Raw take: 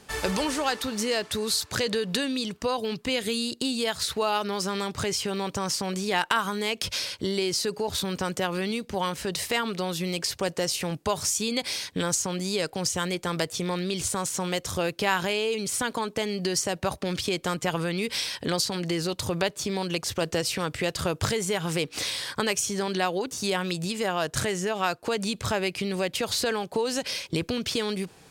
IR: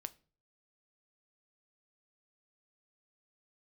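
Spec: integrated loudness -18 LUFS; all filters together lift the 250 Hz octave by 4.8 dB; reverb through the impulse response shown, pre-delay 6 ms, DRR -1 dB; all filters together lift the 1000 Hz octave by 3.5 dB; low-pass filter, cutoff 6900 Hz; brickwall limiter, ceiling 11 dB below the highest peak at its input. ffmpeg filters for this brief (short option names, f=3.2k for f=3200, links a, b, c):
-filter_complex "[0:a]lowpass=6.9k,equalizer=f=250:t=o:g=6.5,equalizer=f=1k:t=o:g=4,alimiter=limit=-16.5dB:level=0:latency=1,asplit=2[a][b];[1:a]atrim=start_sample=2205,adelay=6[c];[b][c]afir=irnorm=-1:irlink=0,volume=4.5dB[d];[a][d]amix=inputs=2:normalize=0,volume=5.5dB"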